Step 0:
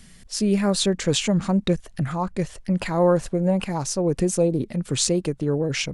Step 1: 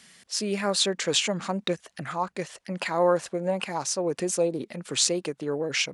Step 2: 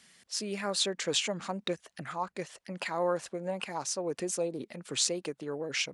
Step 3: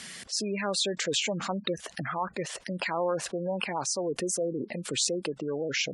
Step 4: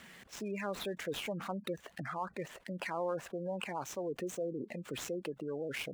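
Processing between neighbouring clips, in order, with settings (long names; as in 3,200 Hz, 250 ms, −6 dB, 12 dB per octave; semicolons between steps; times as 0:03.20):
meter weighting curve A
harmonic and percussive parts rebalanced percussive +3 dB; level −8 dB
harmonic generator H 4 −34 dB, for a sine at −10 dBFS; gate on every frequency bin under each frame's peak −20 dB strong; envelope flattener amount 50%
running median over 9 samples; level −7 dB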